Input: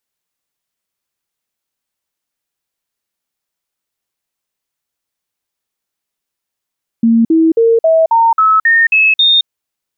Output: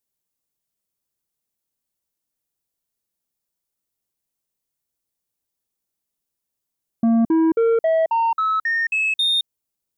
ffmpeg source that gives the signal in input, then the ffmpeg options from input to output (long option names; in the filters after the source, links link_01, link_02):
-f lavfi -i "aevalsrc='0.501*clip(min(mod(t,0.27),0.22-mod(t,0.27))/0.005,0,1)*sin(2*PI*229*pow(2,floor(t/0.27)/2)*mod(t,0.27))':duration=2.43:sample_rate=44100"
-af "equalizer=frequency=1900:width=0.38:gain=-10.5,asoftclip=type=tanh:threshold=-14dB"